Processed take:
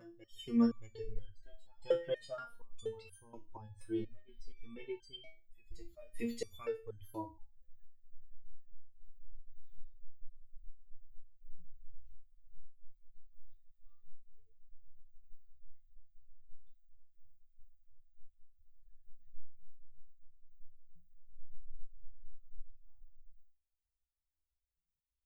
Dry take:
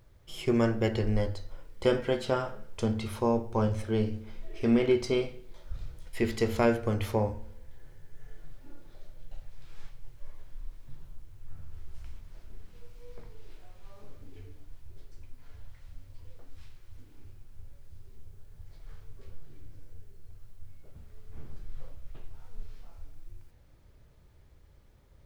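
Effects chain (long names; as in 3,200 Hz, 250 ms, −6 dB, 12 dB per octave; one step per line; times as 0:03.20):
spectral dynamics exaggerated over time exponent 2
in parallel at +2 dB: downward compressor, threshold −43 dBFS, peak gain reduction 20.5 dB
on the sum: backwards echo 626 ms −20.5 dB
step-sequenced resonator 4.2 Hz 170–1,600 Hz
level +6.5 dB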